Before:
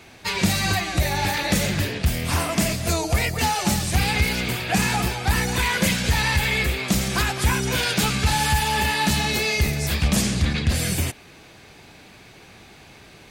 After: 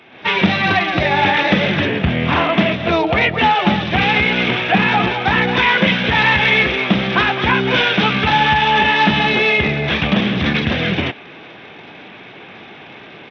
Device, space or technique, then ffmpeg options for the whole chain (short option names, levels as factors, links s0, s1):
Bluetooth headset: -filter_complex "[0:a]asettb=1/sr,asplit=3[s0][s1][s2];[s0]atrim=end=1.854[s3];[s1]atrim=start=1.85:end=2.33,asetpts=PTS-STARTPTS,afade=t=in:d=0.004:c=qsin,afade=t=out:st=0.476:d=0.004:c=qsin,bass=f=250:g=5,treble=f=4000:g=-10[s4];[s2]atrim=start=2.326[s5];[s3][s4]acrossfade=d=0.004:c1=hsin:c2=qsin[s6];[s6][s5]acrossfade=d=0.004:c1=qsin:c2=hsin,highpass=190,dynaudnorm=f=100:g=3:m=2.82,aresample=8000,aresample=44100,volume=1.26" -ar 32000 -c:a sbc -b:a 64k